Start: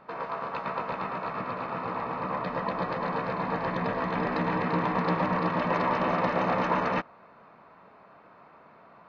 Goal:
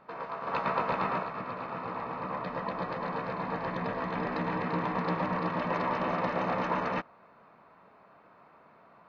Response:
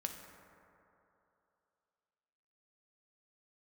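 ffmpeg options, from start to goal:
-filter_complex "[0:a]asettb=1/sr,asplit=3[link_01][link_02][link_03];[link_01]atrim=end=0.474[link_04];[link_02]atrim=start=0.47:end=1.23,asetpts=PTS-STARTPTS,afade=type=in:duration=0.004:curve=qsin,afade=type=out:start_time=0.756:duration=0.004:curve=qsin,acontrast=72[link_05];[link_03]atrim=start=1.226[link_06];[link_04][link_05]acrossfade=duration=0.004:curve1=hsin:curve2=qsin[link_07];[link_07][link_06]acrossfade=duration=0.004:curve1=qsin:curve2=hsin,volume=-4dB"

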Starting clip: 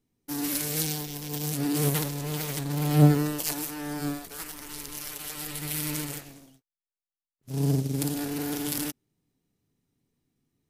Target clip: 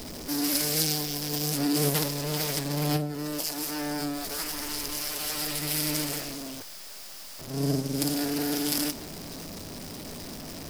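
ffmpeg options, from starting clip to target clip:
ffmpeg -i in.wav -filter_complex "[0:a]aeval=exprs='val(0)+0.5*0.0224*sgn(val(0))':channel_layout=same,equalizer=frequency=125:width_type=o:width=0.33:gain=-11,equalizer=frequency=630:width_type=o:width=0.33:gain=5,equalizer=frequency=5000:width_type=o:width=0.33:gain=9,asettb=1/sr,asplit=3[link_01][link_02][link_03];[link_01]atrim=end=2.964[link_04];[link_02]atrim=start=2.96:end=5.22,asetpts=PTS-STARTPTS,afade=type=in:duration=0.004:curve=qsin,afade=type=out:start_time=2.256:duration=0.004:curve=qsin,acompressor=threshold=-27dB:ratio=16[link_05];[link_03]atrim=start=5.216[link_06];[link_04][link_05]acrossfade=duration=0.004:curve1=hsin:curve2=qsin[link_07];[link_07][link_06]acrossfade=duration=0.004:curve1=qsin:curve2=hsin" out.wav

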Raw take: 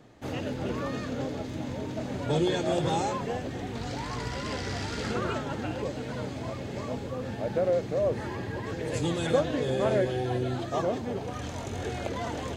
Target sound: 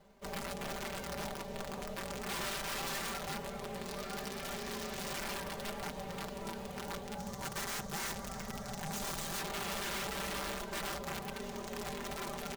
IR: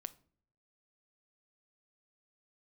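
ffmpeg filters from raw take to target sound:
-filter_complex "[0:a]acrusher=bits=3:mode=log:mix=0:aa=0.000001,aeval=exprs='(mod(17.8*val(0)+1,2)-1)/17.8':channel_layout=same,asplit=2[link_01][link_02];[link_02]adelay=380,highpass=300,lowpass=3400,asoftclip=type=hard:threshold=-33.5dB,volume=-7dB[link_03];[link_01][link_03]amix=inputs=2:normalize=0,aeval=exprs='val(0)*sin(2*PI*320*n/s)':channel_layout=same,asettb=1/sr,asplit=3[link_04][link_05][link_06];[link_04]atrim=end=7.184[link_07];[link_05]atrim=start=7.18:end=9.39,asetpts=PTS-STARTPTS,afade=type=in:duration=0.004:curve=qsin,afade=type=out:start_time=2.206:duration=0.004:curve=qsin,equalizer=frequency=100:width_type=o:width=0.67:gain=7,equalizer=frequency=400:width_type=o:width=0.67:gain=-7,equalizer=frequency=2500:width_type=o:width=0.67:gain=-8,equalizer=frequency=6300:width_type=o:width=0.67:gain=9[link_08];[link_06]atrim=start=9.386[link_09];[link_07][link_08]acrossfade=duration=0.004:curve1=hsin:curve2=qsin[link_10];[link_10][link_09]acrossfade=duration=0.004:curve1=qsin:curve2=hsin,aeval=exprs='(mod(20*val(0)+1,2)-1)/20':channel_layout=same,aecho=1:1:5.1:0.69,volume=-7dB"

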